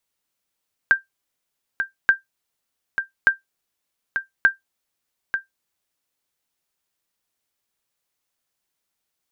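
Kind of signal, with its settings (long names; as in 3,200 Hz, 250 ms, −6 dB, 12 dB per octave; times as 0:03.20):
ping with an echo 1,580 Hz, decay 0.14 s, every 1.18 s, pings 4, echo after 0.89 s, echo −8.5 dB −5.5 dBFS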